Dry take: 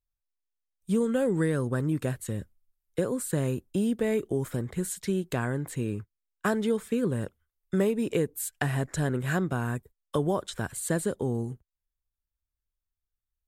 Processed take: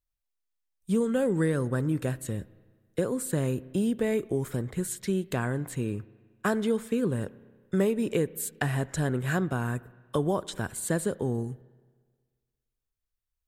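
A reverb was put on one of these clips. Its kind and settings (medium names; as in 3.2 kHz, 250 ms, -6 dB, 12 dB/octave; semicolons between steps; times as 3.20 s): spring tank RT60 1.6 s, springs 31/58 ms, chirp 50 ms, DRR 19.5 dB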